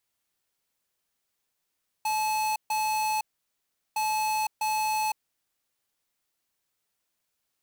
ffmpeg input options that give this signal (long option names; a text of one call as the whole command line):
ffmpeg -f lavfi -i "aevalsrc='0.0447*(2*lt(mod(862*t,1),0.5)-1)*clip(min(mod(mod(t,1.91),0.65),0.51-mod(mod(t,1.91),0.65))/0.005,0,1)*lt(mod(t,1.91),1.3)':duration=3.82:sample_rate=44100" out.wav